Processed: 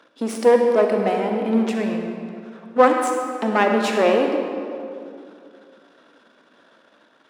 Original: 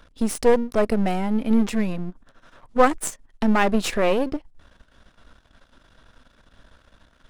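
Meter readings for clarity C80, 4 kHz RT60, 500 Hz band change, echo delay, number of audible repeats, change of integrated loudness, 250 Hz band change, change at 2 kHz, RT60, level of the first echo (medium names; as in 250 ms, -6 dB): 4.5 dB, 1.5 s, +5.0 dB, no echo, no echo, +2.5 dB, 0.0 dB, +2.5 dB, 2.5 s, no echo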